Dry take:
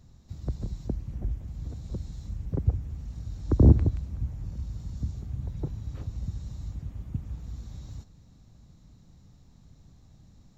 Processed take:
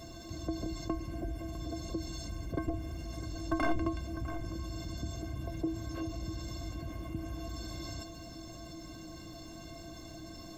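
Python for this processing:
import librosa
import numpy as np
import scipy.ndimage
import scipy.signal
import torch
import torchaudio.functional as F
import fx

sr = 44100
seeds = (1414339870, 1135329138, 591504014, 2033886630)

y = fx.highpass(x, sr, hz=150.0, slope=6)
y = fx.peak_eq(y, sr, hz=520.0, db=8.0, octaves=0.48)
y = 10.0 ** (-22.0 / 20.0) * (np.abs((y / 10.0 ** (-22.0 / 20.0) + 3.0) % 4.0 - 2.0) - 1.0)
y = fx.stiff_resonator(y, sr, f0_hz=320.0, decay_s=0.23, stiffness=0.03)
y = y + 10.0 ** (-21.5 / 20.0) * np.pad(y, (int(653 * sr / 1000.0), 0))[:len(y)]
y = fx.env_flatten(y, sr, amount_pct=50)
y = y * librosa.db_to_amplitude(11.5)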